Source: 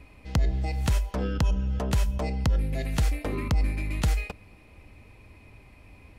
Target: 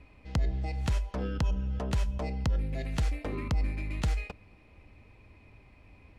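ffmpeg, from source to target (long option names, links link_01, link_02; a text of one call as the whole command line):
ffmpeg -i in.wav -af "adynamicsmooth=sensitivity=5:basefreq=7100,volume=-4.5dB" out.wav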